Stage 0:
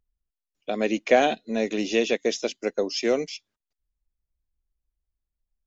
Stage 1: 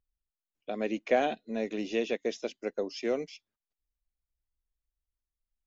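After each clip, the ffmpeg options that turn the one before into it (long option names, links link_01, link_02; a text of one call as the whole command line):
ffmpeg -i in.wav -af "highshelf=frequency=4700:gain=-11,volume=-7dB" out.wav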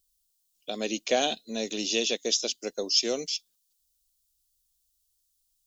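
ffmpeg -i in.wav -af "aexciter=amount=11.1:drive=3.5:freq=3100" out.wav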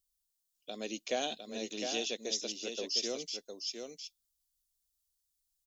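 ffmpeg -i in.wav -af "aecho=1:1:707:0.501,volume=-9dB" out.wav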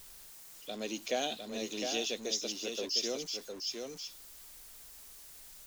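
ffmpeg -i in.wav -af "aeval=exprs='val(0)+0.5*0.00501*sgn(val(0))':channel_layout=same" out.wav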